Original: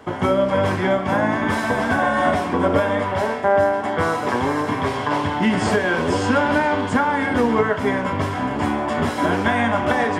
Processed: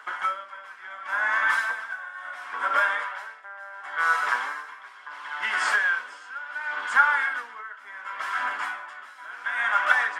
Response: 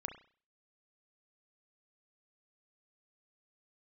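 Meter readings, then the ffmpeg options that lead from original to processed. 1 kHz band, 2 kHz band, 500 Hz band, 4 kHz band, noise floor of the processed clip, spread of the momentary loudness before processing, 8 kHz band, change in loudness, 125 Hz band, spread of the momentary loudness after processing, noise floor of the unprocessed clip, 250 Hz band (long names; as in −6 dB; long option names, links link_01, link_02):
−7.0 dB, 0.0 dB, −24.0 dB, −7.0 dB, −46 dBFS, 4 LU, −7.0 dB, −5.5 dB, below −40 dB, 19 LU, −26 dBFS, below −35 dB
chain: -af "highpass=frequency=1400:width_type=q:width=3.5,aphaser=in_gain=1:out_gain=1:delay=4.7:decay=0.25:speed=0.59:type=triangular,aeval=exprs='val(0)*pow(10,-20*(0.5-0.5*cos(2*PI*0.71*n/s))/20)':channel_layout=same,volume=-3.5dB"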